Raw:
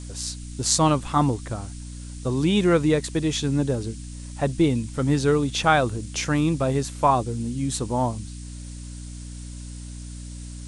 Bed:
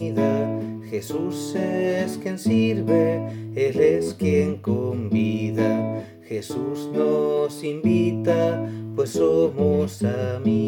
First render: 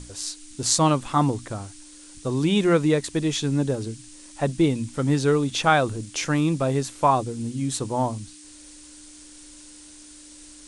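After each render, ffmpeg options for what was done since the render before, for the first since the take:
-af "bandreject=f=60:t=h:w=6,bandreject=f=120:t=h:w=6,bandreject=f=180:t=h:w=6,bandreject=f=240:t=h:w=6"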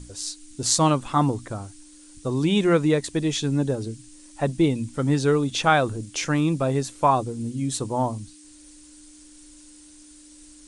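-af "afftdn=nr=6:nf=-46"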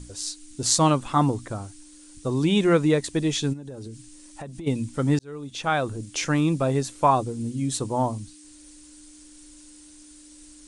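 -filter_complex "[0:a]asplit=3[a][b][c];[a]afade=t=out:st=3.52:d=0.02[d];[b]acompressor=threshold=-33dB:ratio=16:attack=3.2:release=140:knee=1:detection=peak,afade=t=in:st=3.52:d=0.02,afade=t=out:st=4.66:d=0.02[e];[c]afade=t=in:st=4.66:d=0.02[f];[d][e][f]amix=inputs=3:normalize=0,asplit=2[g][h];[g]atrim=end=5.19,asetpts=PTS-STARTPTS,afade=t=out:st=5.186:d=0.004:c=hsin[i];[h]atrim=start=5.19,asetpts=PTS-STARTPTS,afade=t=in:d=0.98[j];[i][j]concat=n=2:v=0:a=1"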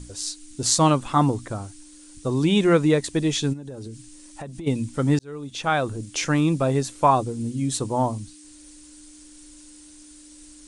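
-af "volume=1.5dB,alimiter=limit=-3dB:level=0:latency=1"

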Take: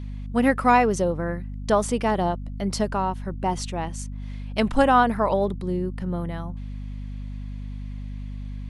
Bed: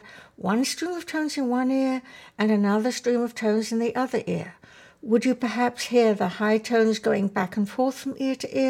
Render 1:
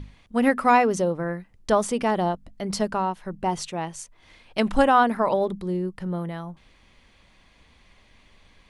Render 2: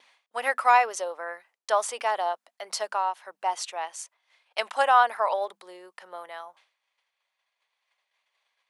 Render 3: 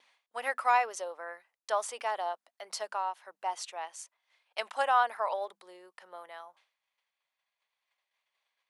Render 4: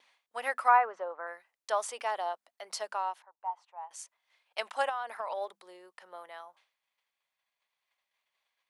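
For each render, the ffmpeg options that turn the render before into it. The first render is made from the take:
-af "bandreject=f=50:t=h:w=6,bandreject=f=100:t=h:w=6,bandreject=f=150:t=h:w=6,bandreject=f=200:t=h:w=6,bandreject=f=250:t=h:w=6"
-af "agate=range=-33dB:threshold=-43dB:ratio=3:detection=peak,highpass=f=640:w=0.5412,highpass=f=640:w=1.3066"
-af "volume=-6.5dB"
-filter_complex "[0:a]asettb=1/sr,asplit=3[a][b][c];[a]atrim=end=0.684[d];[b]atrim=start=0.68:end=1.27,asetpts=PTS-STARTPTS,afade=t=in:d=0.004:c=qsin,afade=t=out:st=0.586:d=0.004:c=qsin,lowpass=f=1.4k:t=q:w=1.6[e];[c]atrim=start=1.266[f];[d][e]acrossfade=d=0.004:c1=hsin:c2=qsin[g];[g][f]acrossfade=d=0.004:c1=qsin:c2=hsin,asettb=1/sr,asplit=3[h][i][j];[h]atrim=end=3.224[k];[i]atrim=start=3.22:end=3.91,asetpts=PTS-STARTPTS,afade=t=in:d=0.004:c=qsin,afade=t=out:st=0.686:d=0.004:c=qsin,bandpass=f=900:t=q:w=4.8[l];[j]atrim=start=3.906[m];[k][l]acrossfade=d=0.004:c1=hsin:c2=qsin[n];[n][m]acrossfade=d=0.004:c1=qsin:c2=hsin,asettb=1/sr,asplit=3[o][p][q];[o]atrim=end=4.894[r];[p]atrim=start=4.89:end=5.37,asetpts=PTS-STARTPTS,afade=t=in:d=0.004:c=qsin,afade=t=out:st=0.476:d=0.004:c=qsin,acompressor=threshold=-31dB:ratio=6:attack=3.2:release=140:knee=1:detection=peak[s];[q]atrim=start=5.366[t];[r][s]acrossfade=d=0.004:c1=hsin:c2=qsin[u];[u][t]acrossfade=d=0.004:c1=qsin:c2=hsin"

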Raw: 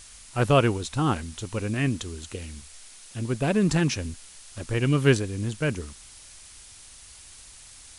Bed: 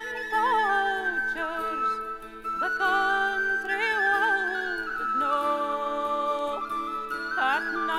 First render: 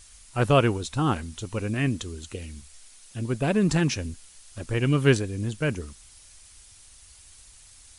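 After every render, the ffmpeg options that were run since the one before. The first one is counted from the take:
-af "afftdn=nr=6:nf=-48"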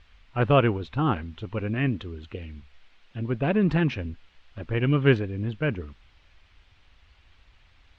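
-af "lowpass=f=3.1k:w=0.5412,lowpass=f=3.1k:w=1.3066"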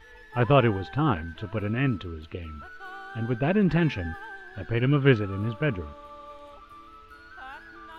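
-filter_complex "[1:a]volume=-17.5dB[a];[0:a][a]amix=inputs=2:normalize=0"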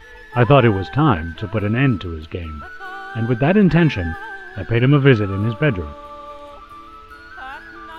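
-af "volume=9dB,alimiter=limit=-2dB:level=0:latency=1"

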